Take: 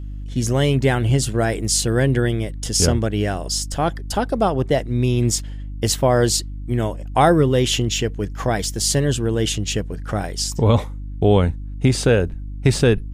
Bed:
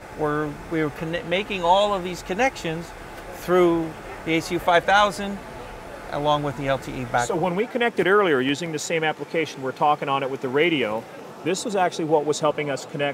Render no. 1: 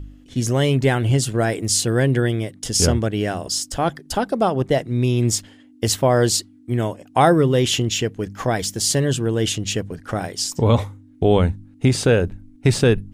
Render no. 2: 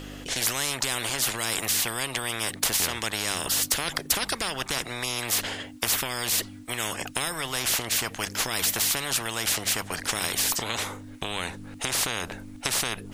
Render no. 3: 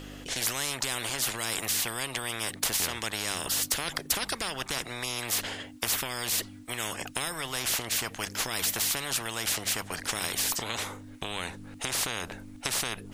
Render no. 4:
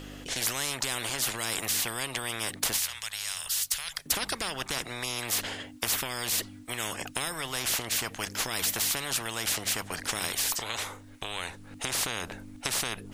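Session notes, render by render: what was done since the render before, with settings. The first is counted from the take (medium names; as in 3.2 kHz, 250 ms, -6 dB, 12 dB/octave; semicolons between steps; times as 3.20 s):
de-hum 50 Hz, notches 4
compression, threshold -20 dBFS, peak gain reduction 10 dB; spectrum-flattening compressor 10:1
trim -3.5 dB
2.79–4.06 s: amplifier tone stack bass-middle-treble 10-0-10; 10.32–11.71 s: peaking EQ 200 Hz -7 dB 1.9 oct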